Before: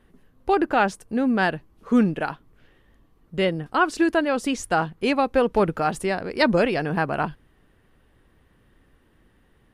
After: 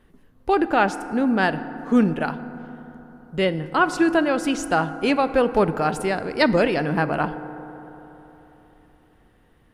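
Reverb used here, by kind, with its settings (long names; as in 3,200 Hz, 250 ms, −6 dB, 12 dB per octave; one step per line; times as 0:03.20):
feedback delay network reverb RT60 3.7 s, high-frequency decay 0.3×, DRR 11.5 dB
level +1 dB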